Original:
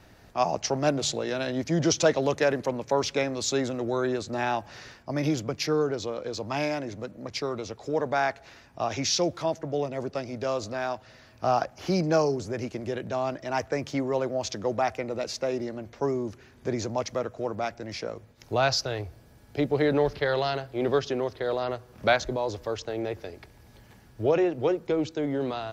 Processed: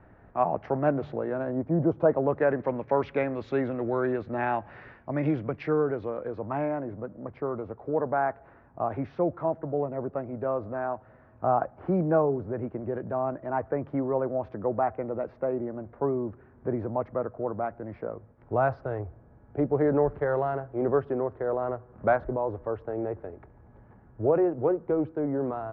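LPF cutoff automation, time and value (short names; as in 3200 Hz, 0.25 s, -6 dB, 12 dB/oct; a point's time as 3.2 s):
LPF 24 dB/oct
1.03 s 1700 Hz
1.86 s 1000 Hz
2.74 s 2100 Hz
5.74 s 2100 Hz
6.82 s 1400 Hz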